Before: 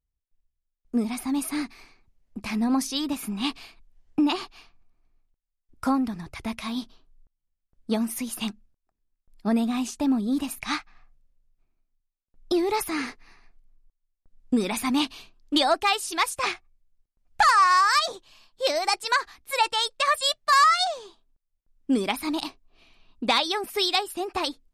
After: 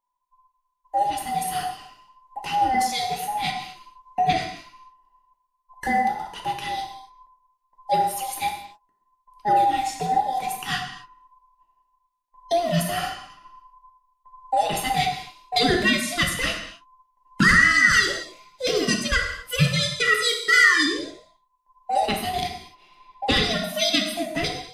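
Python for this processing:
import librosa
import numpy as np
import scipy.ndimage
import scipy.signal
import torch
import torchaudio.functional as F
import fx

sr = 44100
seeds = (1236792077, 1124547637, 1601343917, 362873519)

y = fx.band_invert(x, sr, width_hz=1000)
y = fx.rev_gated(y, sr, seeds[0], gate_ms=290, shape='falling', drr_db=1.0)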